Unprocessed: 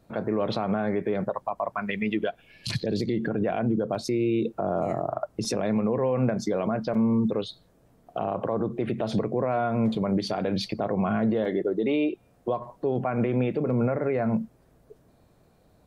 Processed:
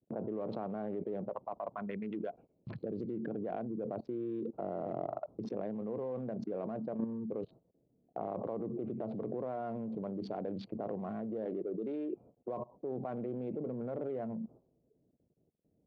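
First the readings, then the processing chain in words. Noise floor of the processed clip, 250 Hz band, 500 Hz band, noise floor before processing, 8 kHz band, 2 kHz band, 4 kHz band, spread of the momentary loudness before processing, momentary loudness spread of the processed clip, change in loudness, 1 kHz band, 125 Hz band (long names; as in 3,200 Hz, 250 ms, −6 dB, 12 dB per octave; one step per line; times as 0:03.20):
−75 dBFS, −12.5 dB, −11.0 dB, −61 dBFS, below −30 dB, −20.5 dB, below −25 dB, 6 LU, 4 LU, −12.5 dB, −12.5 dB, −15.5 dB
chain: adaptive Wiener filter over 25 samples
low-pass that shuts in the quiet parts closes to 390 Hz, open at −22 dBFS
output level in coarse steps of 21 dB
resonant band-pass 410 Hz, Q 0.61
noise gate −60 dBFS, range −12 dB
level +5.5 dB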